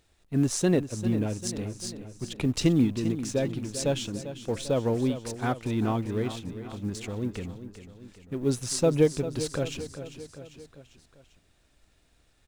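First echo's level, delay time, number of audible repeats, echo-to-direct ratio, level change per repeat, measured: -12.0 dB, 396 ms, 4, -10.5 dB, -5.0 dB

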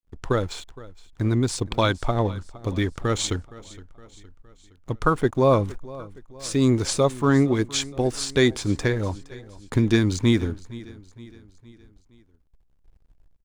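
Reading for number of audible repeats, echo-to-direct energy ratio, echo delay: 3, -18.0 dB, 465 ms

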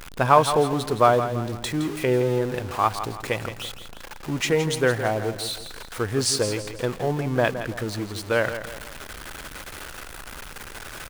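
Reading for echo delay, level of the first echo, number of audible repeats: 166 ms, -10.5 dB, 3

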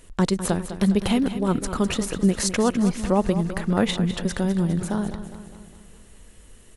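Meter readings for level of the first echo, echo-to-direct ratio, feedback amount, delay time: -11.5 dB, -10.0 dB, 55%, 204 ms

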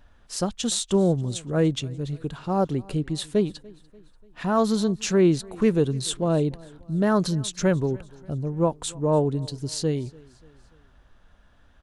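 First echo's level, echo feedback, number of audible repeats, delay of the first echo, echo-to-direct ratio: -24.0 dB, 50%, 2, 292 ms, -23.0 dB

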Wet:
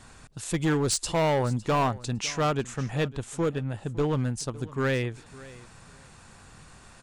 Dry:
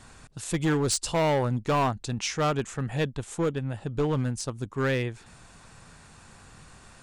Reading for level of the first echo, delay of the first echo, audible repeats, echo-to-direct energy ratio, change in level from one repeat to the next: -19.5 dB, 557 ms, 2, -19.5 dB, -14.5 dB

